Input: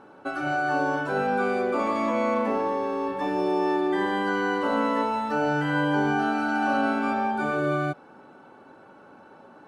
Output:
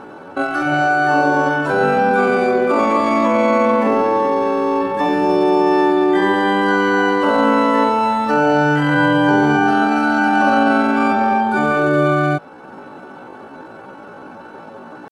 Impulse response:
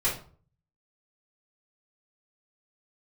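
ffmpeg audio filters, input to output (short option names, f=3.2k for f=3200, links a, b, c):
-filter_complex "[0:a]asplit=2[a][b];[b]acompressor=threshold=-38dB:ratio=8,volume=-1.5dB[c];[a][c]amix=inputs=2:normalize=0,atempo=0.64,volume=9dB"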